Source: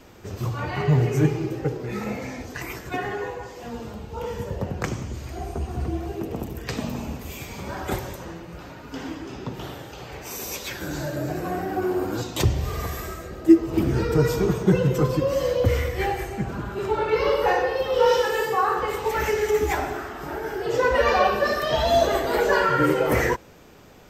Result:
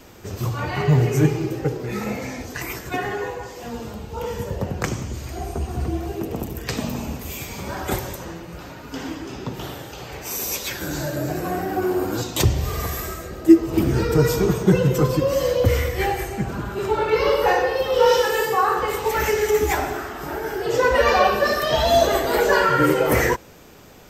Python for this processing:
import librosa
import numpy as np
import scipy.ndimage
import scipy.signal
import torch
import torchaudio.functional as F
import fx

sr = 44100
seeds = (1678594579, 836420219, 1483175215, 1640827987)

y = fx.high_shelf(x, sr, hz=5700.0, db=6.5)
y = F.gain(torch.from_numpy(y), 2.5).numpy()